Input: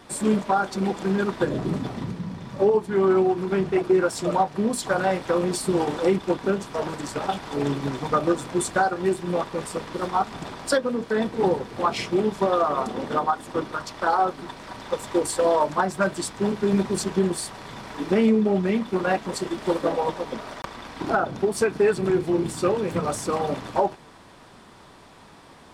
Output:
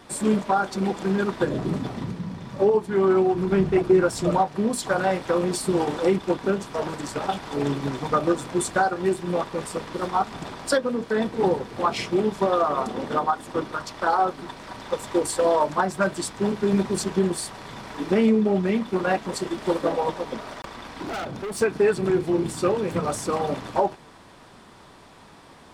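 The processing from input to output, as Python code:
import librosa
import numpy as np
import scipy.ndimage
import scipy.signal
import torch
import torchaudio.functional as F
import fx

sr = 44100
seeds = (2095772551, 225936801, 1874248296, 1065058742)

y = fx.low_shelf(x, sr, hz=160.0, db=11.0, at=(3.34, 4.39))
y = fx.clip_hard(y, sr, threshold_db=-28.5, at=(20.4, 21.61))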